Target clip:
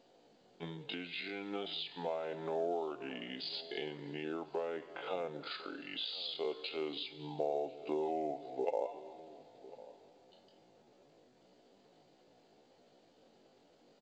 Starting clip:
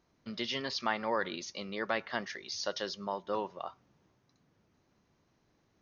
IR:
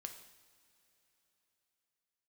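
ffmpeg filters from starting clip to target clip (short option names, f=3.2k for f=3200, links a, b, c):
-filter_complex "[0:a]alimiter=level_in=2dB:limit=-24dB:level=0:latency=1:release=126,volume=-2dB,asetrate=32667,aresample=44100,bandreject=f=620:w=17,asplit=2[a][b];[1:a]atrim=start_sample=2205,highshelf=f=2k:g=8[c];[b][c]afir=irnorm=-1:irlink=0,volume=-4.5dB[d];[a][d]amix=inputs=2:normalize=0,acompressor=threshold=-40dB:ratio=20,atempo=0.56,firequalizer=gain_entry='entry(620,0);entry(1100,-17);entry(2700,-14)':delay=0.05:min_phase=1,acontrast=58,highpass=470,highshelf=f=3.6k:g=5.5,asplit=2[e][f];[f]adelay=1050,volume=-18dB,highshelf=f=4k:g=-23.6[g];[e][g]amix=inputs=2:normalize=0,volume=7.5dB" -ar 16000 -c:a pcm_mulaw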